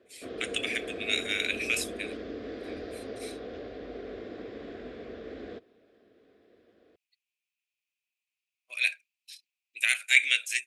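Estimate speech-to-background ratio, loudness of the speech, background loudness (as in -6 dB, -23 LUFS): 13.5 dB, -27.0 LUFS, -40.5 LUFS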